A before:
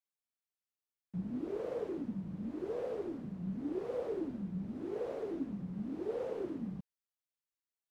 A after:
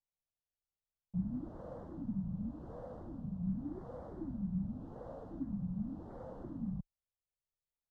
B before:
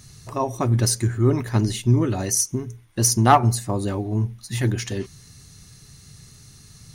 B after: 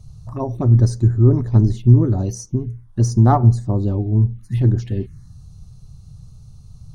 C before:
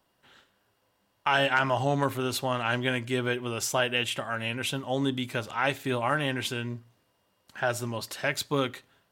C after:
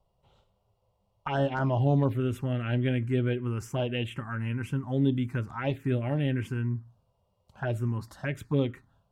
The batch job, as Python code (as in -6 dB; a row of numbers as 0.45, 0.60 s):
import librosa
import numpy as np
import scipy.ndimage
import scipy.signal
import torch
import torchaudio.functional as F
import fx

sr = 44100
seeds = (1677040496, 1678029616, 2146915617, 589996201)

y = fx.env_phaser(x, sr, low_hz=280.0, high_hz=2700.0, full_db=-19.0)
y = fx.tilt_eq(y, sr, slope=-3.5)
y = y * 10.0 ** (-3.0 / 20.0)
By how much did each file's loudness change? -2.5, +4.5, -1.0 LU